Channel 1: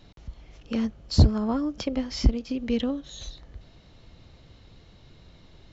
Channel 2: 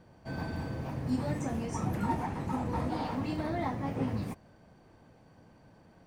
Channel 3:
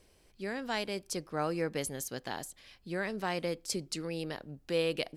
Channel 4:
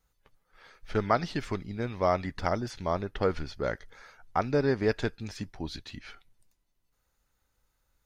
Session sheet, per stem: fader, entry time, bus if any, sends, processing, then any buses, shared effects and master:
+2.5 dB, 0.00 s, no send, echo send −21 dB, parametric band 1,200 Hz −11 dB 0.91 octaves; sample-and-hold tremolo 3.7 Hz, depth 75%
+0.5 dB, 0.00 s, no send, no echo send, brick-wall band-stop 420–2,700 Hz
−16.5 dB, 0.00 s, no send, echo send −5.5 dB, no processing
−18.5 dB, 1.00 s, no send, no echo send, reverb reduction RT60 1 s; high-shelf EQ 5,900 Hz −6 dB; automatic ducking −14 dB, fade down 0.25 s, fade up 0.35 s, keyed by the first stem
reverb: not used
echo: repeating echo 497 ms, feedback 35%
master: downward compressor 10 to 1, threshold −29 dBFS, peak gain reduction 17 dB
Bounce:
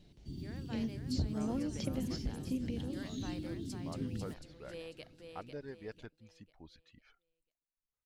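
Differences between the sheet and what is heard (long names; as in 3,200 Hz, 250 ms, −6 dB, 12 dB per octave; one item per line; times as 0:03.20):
stem 1 +2.5 dB → −8.5 dB
stem 2 +0.5 dB → −6.5 dB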